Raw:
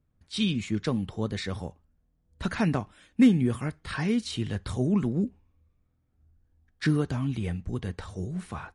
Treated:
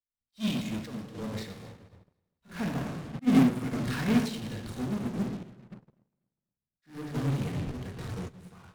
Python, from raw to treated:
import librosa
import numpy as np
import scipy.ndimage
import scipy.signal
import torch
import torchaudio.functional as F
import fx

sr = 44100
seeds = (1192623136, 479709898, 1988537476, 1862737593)

p1 = fx.room_shoebox(x, sr, seeds[0], volume_m3=1000.0, walls='mixed', distance_m=1.8)
p2 = fx.fuzz(p1, sr, gain_db=43.0, gate_db=-40.0)
p3 = p1 + F.gain(torch.from_numpy(p2), -6.0).numpy()
p4 = fx.tremolo_random(p3, sr, seeds[1], hz=3.5, depth_pct=55)
p5 = p4 + fx.echo_feedback(p4, sr, ms=246, feedback_pct=39, wet_db=-14, dry=0)
p6 = fx.auto_swell(p5, sr, attack_ms=173.0)
p7 = fx.upward_expand(p6, sr, threshold_db=-34.0, expansion=2.5)
y = F.gain(torch.from_numpy(p7), -4.0).numpy()